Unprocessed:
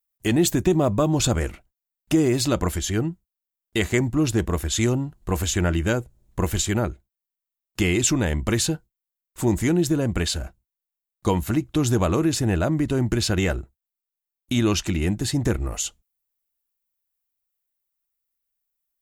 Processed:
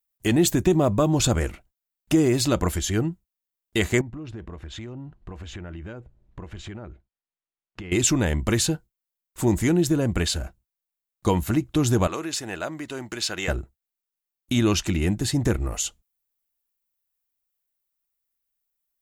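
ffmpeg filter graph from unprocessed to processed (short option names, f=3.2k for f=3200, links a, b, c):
-filter_complex "[0:a]asettb=1/sr,asplit=3[a][b][c];[a]atrim=end=4.014[d];[b]atrim=start=4.01:end=7.92,asetpts=PTS-STARTPTS,afade=t=in:d=0.004:c=qsin,afade=t=out:st=3.906:d=0.004:c=qsin,lowpass=2.8k,acompressor=threshold=-34dB:ratio=6:attack=3.2:release=140:knee=1:detection=peak[e];[c]atrim=start=7.916[f];[d][e]acrossfade=d=0.004:c1=hsin:c2=qsin[g];[g][f]acrossfade=d=0.004:c1=qsin:c2=hsin,asettb=1/sr,asplit=3[h][i][j];[h]atrim=end=12.074[k];[i]atrim=start=12.07:end=13.48,asetpts=PTS-STARTPTS,afade=t=in:d=0.004:c=qsin,afade=t=out:st=1.406:d=0.004:c=qsin,highpass=f=1.1k:p=1,equalizer=f=12k:t=o:w=0.83:g=-5.5[l];[j]atrim=start=13.476[m];[k][l]acrossfade=d=0.004:c1=hsin:c2=qsin[n];[n][m]acrossfade=d=0.004:c1=qsin:c2=hsin"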